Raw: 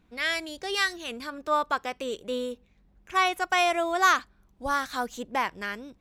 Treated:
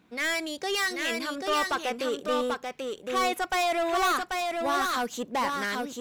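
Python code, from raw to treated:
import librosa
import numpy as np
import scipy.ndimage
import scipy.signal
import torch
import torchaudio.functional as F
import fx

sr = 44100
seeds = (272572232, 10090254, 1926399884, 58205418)

p1 = scipy.signal.sosfilt(scipy.signal.butter(2, 160.0, 'highpass', fs=sr, output='sos'), x)
p2 = 10.0 ** (-28.0 / 20.0) * np.tanh(p1 / 10.0 ** (-28.0 / 20.0))
p3 = p2 + fx.echo_single(p2, sr, ms=788, db=-4.0, dry=0)
y = F.gain(torch.from_numpy(p3), 5.0).numpy()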